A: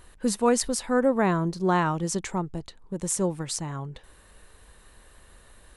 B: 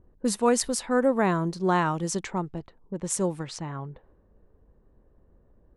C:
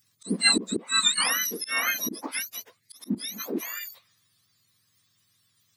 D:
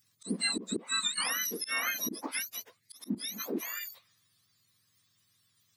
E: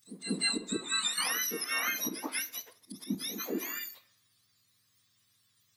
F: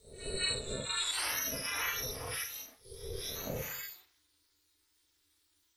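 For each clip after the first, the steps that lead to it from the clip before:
low-pass opened by the level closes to 320 Hz, open at -23.5 dBFS; low shelf 85 Hz -7 dB
spectrum mirrored in octaves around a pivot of 1400 Hz; auto swell 0.232 s; gain +4.5 dB
compressor 6:1, threshold -25 dBFS, peak gain reduction 9.5 dB; gain -3 dB
pre-echo 0.19 s -13 dB; reverb RT60 0.55 s, pre-delay 6 ms, DRR 11 dB
phase scrambler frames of 0.2 s; ring modulator 190 Hz

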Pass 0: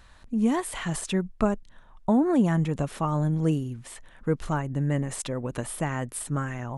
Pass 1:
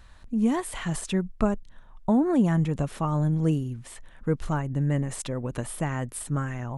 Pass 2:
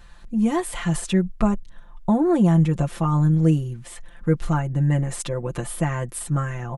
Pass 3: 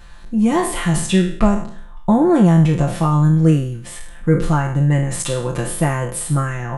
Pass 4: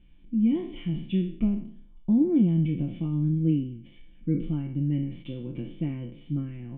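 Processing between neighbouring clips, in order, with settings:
low shelf 150 Hz +5.5 dB; gain -1.5 dB
comb 5.8 ms, depth 77%; gain +2 dB
spectral trails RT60 0.55 s; gain +4.5 dB
vocal tract filter i; gain -2 dB

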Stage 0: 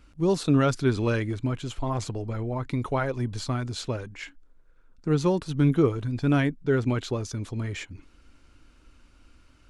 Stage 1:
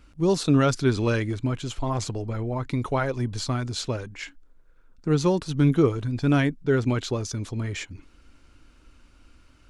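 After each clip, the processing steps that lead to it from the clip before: dynamic EQ 5700 Hz, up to +4 dB, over -51 dBFS, Q 1; gain +1.5 dB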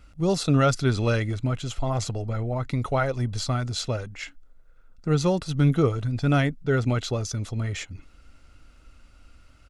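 comb 1.5 ms, depth 40%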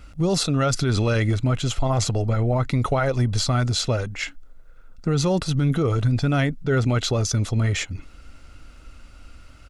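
limiter -20.5 dBFS, peak gain reduction 10.5 dB; gain +7.5 dB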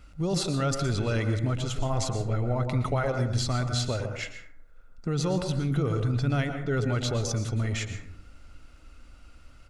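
plate-style reverb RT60 0.67 s, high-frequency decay 0.4×, pre-delay 0.105 s, DRR 6.5 dB; gain -7 dB

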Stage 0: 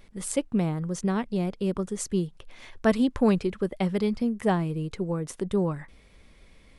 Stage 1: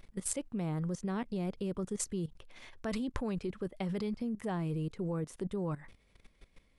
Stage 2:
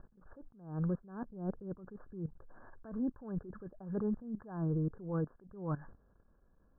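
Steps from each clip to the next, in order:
level quantiser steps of 17 dB
Chebyshev low-pass 1700 Hz, order 10; attack slew limiter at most 110 dB/s; gain +2.5 dB

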